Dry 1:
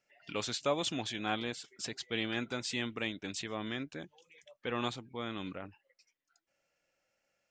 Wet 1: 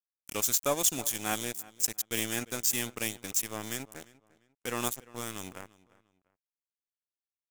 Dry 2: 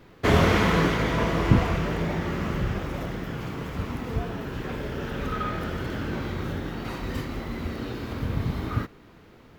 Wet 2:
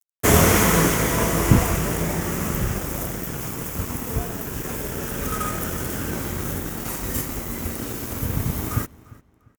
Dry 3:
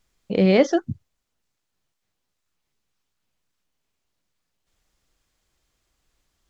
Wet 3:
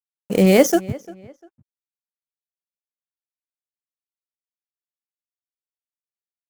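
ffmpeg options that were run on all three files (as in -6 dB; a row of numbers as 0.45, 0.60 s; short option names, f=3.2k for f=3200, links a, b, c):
-filter_complex "[0:a]aeval=exprs='sgn(val(0))*max(abs(val(0))-0.00794,0)':c=same,asplit=2[a][b];[b]adelay=348,lowpass=f=3.6k:p=1,volume=-20.5dB,asplit=2[c][d];[d]adelay=348,lowpass=f=3.6k:p=1,volume=0.31[e];[a][c][e]amix=inputs=3:normalize=0,aexciter=amount=10.4:drive=4.6:freq=6.1k,volume=3.5dB"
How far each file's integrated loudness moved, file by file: +6.5, +4.5, +3.5 LU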